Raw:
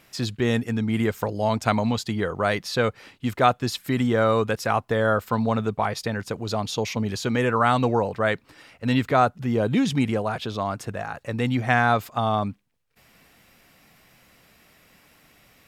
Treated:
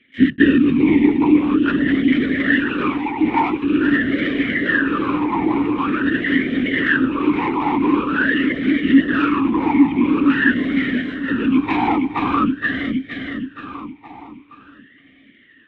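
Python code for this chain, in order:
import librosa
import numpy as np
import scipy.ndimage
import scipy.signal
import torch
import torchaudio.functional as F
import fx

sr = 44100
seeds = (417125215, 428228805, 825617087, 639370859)

p1 = np.r_[np.sort(x[:len(x) // 8 * 8].reshape(-1, 8), axis=1).ravel(), x[len(x) // 8 * 8:]]
p2 = fx.echo_pitch(p1, sr, ms=467, semitones=3, count=3, db_per_echo=-3.0)
p3 = fx.lpc_vocoder(p2, sr, seeds[0], excitation='whisper', order=16)
p4 = fx.level_steps(p3, sr, step_db=15)
p5 = p3 + F.gain(torch.from_numpy(p4), -2.5).numpy()
p6 = fx.leveller(p5, sr, passes=2)
p7 = fx.peak_eq(p6, sr, hz=1800.0, db=10.5, octaves=0.26)
p8 = p7 + fx.echo_feedback(p7, sr, ms=470, feedback_pct=47, wet_db=-6, dry=0)
p9 = fx.rider(p8, sr, range_db=10, speed_s=2.0)
p10 = fx.vowel_sweep(p9, sr, vowels='i-u', hz=0.46)
y = F.gain(torch.from_numpy(p10), 6.5).numpy()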